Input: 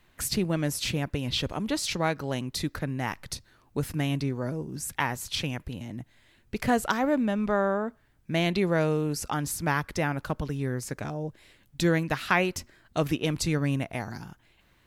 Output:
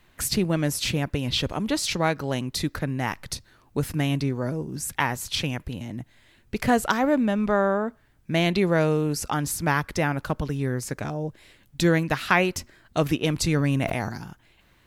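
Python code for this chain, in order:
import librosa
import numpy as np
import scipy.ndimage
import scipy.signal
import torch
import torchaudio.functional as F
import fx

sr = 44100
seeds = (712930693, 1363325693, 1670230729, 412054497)

y = fx.sustainer(x, sr, db_per_s=28.0, at=(13.39, 14.09))
y = y * 10.0 ** (3.5 / 20.0)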